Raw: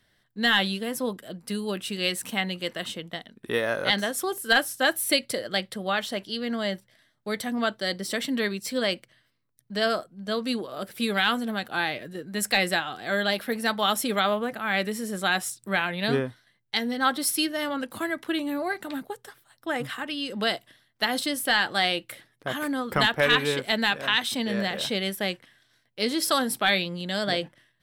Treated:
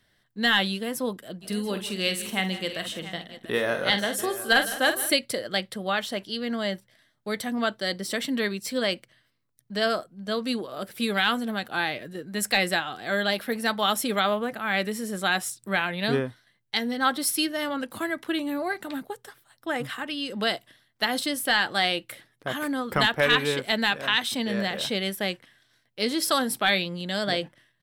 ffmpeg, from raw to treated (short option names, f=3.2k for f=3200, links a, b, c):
-filter_complex "[0:a]asplit=3[a][b][c];[a]afade=t=out:st=1.41:d=0.02[d];[b]aecho=1:1:48|159|200|690:0.335|0.168|0.119|0.188,afade=t=in:st=1.41:d=0.02,afade=t=out:st=5.11:d=0.02[e];[c]afade=t=in:st=5.11:d=0.02[f];[d][e][f]amix=inputs=3:normalize=0"